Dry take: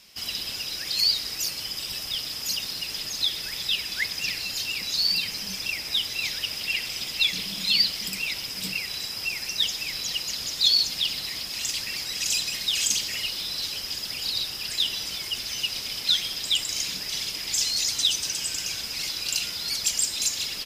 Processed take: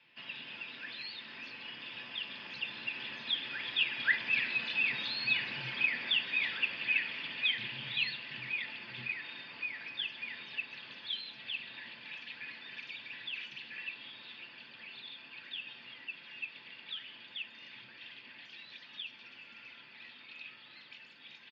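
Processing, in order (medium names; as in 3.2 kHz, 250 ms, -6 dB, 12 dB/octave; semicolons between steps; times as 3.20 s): Doppler pass-by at 4.87 s, 8 m/s, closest 11 m; peaking EQ 840 Hz -7.5 dB 0.91 oct; comb 1.1 ms, depth 32%; in parallel at -0.5 dB: compression, threshold -43 dBFS, peak gain reduction 23 dB; on the sum: saturation -13.5 dBFS, distortion -24 dB; on a send at -3.5 dB: reverberation RT60 0.25 s, pre-delay 3 ms; on the sum: speed mistake 25 fps video run at 24 fps; mistuned SSB -53 Hz 240–3200 Hz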